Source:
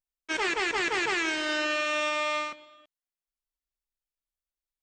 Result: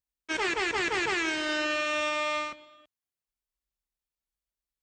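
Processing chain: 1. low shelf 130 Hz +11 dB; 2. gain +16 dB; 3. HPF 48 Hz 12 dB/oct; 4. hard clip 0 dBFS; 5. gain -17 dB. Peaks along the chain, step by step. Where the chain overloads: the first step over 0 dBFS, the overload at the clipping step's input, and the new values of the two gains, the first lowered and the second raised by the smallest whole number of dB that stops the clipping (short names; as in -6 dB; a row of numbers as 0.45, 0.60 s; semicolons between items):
-17.5, -1.5, -1.5, -1.5, -18.5 dBFS; no overload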